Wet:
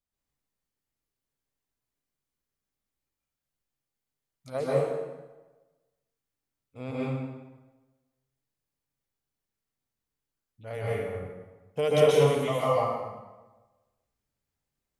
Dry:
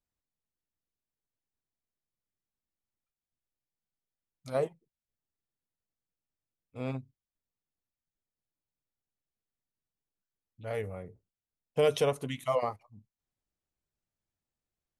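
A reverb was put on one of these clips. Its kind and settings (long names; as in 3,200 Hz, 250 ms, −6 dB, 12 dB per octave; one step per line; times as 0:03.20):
dense smooth reverb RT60 1.2 s, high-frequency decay 0.75×, pre-delay 115 ms, DRR −7.5 dB
level −2.5 dB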